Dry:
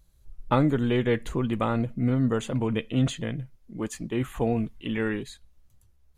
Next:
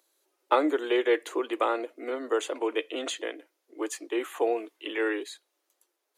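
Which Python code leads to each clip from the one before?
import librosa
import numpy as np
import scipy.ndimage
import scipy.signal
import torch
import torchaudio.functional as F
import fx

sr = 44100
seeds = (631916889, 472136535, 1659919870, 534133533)

y = scipy.signal.sosfilt(scipy.signal.butter(12, 310.0, 'highpass', fs=sr, output='sos'), x)
y = y * 10.0 ** (2.0 / 20.0)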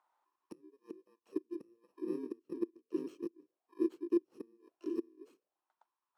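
y = fx.bit_reversed(x, sr, seeds[0], block=64)
y = fx.gate_flip(y, sr, shuts_db=-20.0, range_db=-32)
y = fx.auto_wah(y, sr, base_hz=340.0, top_hz=1000.0, q=4.8, full_db=-39.0, direction='down')
y = y * 10.0 ** (7.5 / 20.0)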